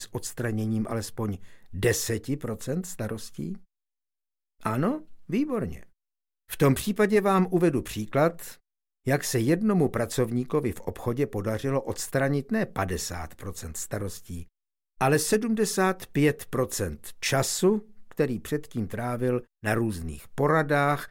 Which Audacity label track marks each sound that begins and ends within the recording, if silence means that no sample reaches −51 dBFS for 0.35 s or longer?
4.600000	5.870000	sound
6.490000	8.560000	sound
9.050000	14.480000	sound